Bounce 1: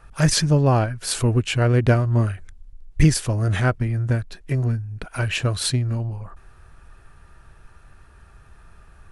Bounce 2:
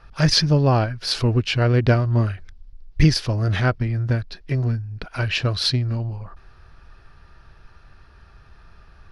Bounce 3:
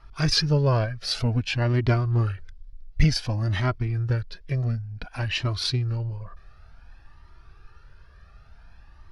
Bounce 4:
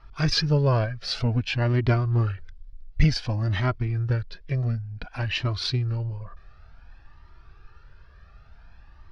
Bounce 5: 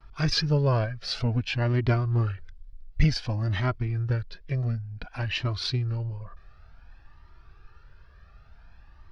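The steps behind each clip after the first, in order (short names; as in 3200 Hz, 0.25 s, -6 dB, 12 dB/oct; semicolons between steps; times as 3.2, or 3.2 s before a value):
resonant high shelf 6300 Hz -9 dB, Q 3
cascading flanger rising 0.55 Hz
LPF 5200 Hz 12 dB/oct
gate with hold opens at -48 dBFS; gain -2 dB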